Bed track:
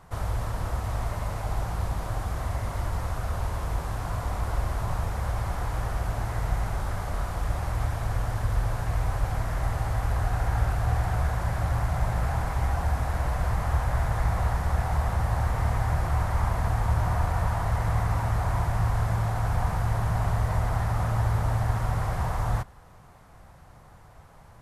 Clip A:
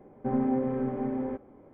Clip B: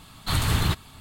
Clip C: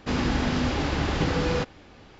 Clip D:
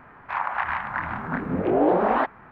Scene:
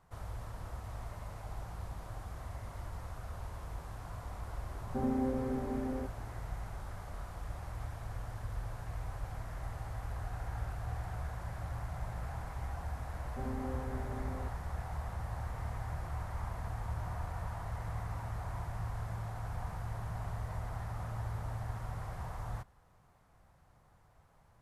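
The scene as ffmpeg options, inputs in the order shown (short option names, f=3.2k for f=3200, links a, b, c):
-filter_complex "[1:a]asplit=2[a][b];[0:a]volume=-14dB[c];[b]equalizer=f=250:w=1.5:g=-3[d];[a]atrim=end=1.73,asetpts=PTS-STARTPTS,volume=-6dB,afade=t=in:d=0.004:c=hsin,afade=t=out:st=1.726:d=0.004:c=hsin,adelay=4700[e];[d]atrim=end=1.73,asetpts=PTS-STARTPTS,volume=-12dB,afade=t=in:d=0.004:c=hsin,afade=t=out:st=1.726:d=0.004:c=hsin,adelay=13120[f];[c][e][f]amix=inputs=3:normalize=0"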